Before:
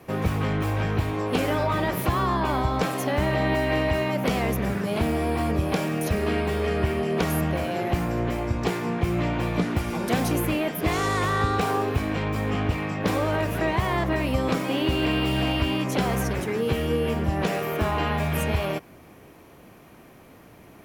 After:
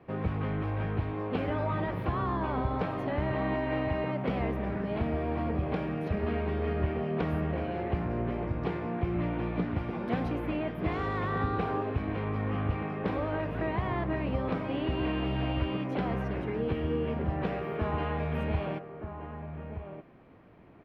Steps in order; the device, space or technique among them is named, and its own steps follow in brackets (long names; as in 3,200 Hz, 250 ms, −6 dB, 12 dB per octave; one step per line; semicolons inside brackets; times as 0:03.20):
shout across a valley (high-frequency loss of the air 400 metres; slap from a distant wall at 210 metres, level −8 dB)
level −6 dB